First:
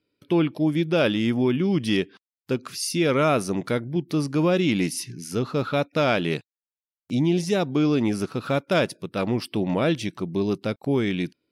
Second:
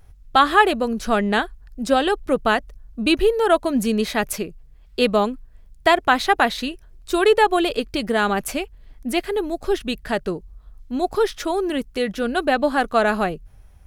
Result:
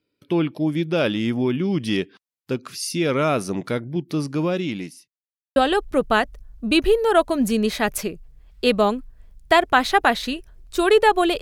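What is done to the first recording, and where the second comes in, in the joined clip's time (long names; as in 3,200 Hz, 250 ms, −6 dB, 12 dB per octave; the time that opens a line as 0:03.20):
first
0:04.08–0:05.08: fade out equal-power
0:05.08–0:05.56: silence
0:05.56: continue with second from 0:01.91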